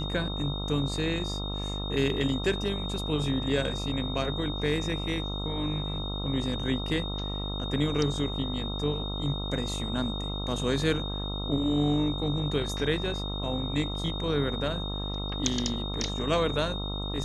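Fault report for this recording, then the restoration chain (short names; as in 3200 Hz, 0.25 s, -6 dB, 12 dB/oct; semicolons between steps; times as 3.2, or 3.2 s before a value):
buzz 50 Hz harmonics 27 -34 dBFS
tone 3700 Hz -36 dBFS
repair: notch 3700 Hz, Q 30; de-hum 50 Hz, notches 27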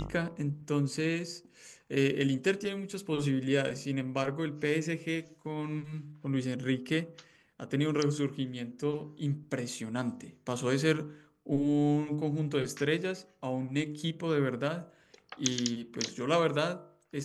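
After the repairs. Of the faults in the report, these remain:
none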